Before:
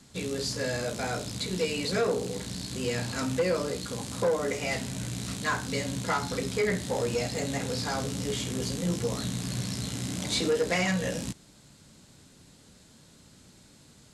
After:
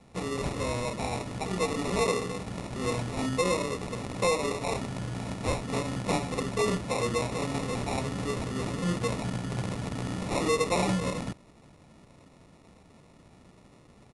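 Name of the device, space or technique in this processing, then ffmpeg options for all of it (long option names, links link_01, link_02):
crushed at another speed: -af "asetrate=88200,aresample=44100,acrusher=samples=14:mix=1:aa=0.000001,asetrate=22050,aresample=44100"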